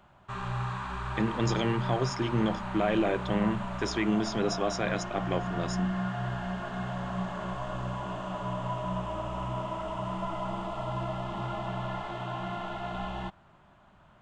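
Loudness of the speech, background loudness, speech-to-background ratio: -30.5 LUFS, -35.0 LUFS, 4.5 dB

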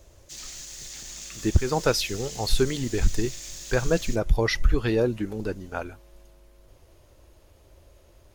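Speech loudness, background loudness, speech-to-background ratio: -26.5 LUFS, -38.0 LUFS, 11.5 dB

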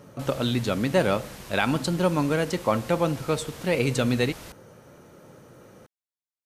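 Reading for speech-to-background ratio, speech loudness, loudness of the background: 16.5 dB, -25.5 LUFS, -42.0 LUFS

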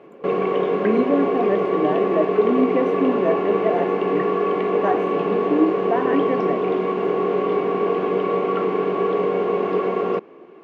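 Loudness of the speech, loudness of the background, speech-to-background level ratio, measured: -24.0 LUFS, -21.5 LUFS, -2.5 dB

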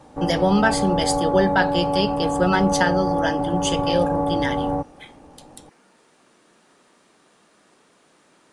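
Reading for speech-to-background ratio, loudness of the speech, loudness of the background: 1.0 dB, -22.5 LUFS, -23.5 LUFS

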